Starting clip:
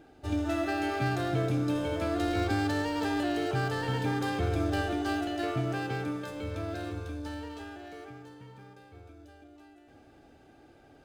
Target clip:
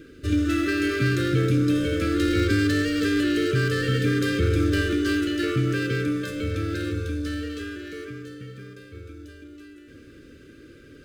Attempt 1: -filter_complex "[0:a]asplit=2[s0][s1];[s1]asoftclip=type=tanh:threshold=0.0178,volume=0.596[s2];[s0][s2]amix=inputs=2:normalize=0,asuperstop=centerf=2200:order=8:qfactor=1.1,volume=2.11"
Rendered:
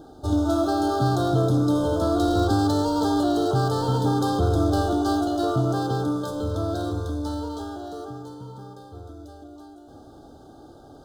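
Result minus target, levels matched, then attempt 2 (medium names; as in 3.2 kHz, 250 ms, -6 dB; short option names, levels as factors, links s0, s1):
2 kHz band -12.5 dB
-filter_complex "[0:a]asplit=2[s0][s1];[s1]asoftclip=type=tanh:threshold=0.0178,volume=0.596[s2];[s0][s2]amix=inputs=2:normalize=0,asuperstop=centerf=820:order=8:qfactor=1.1,volume=2.11"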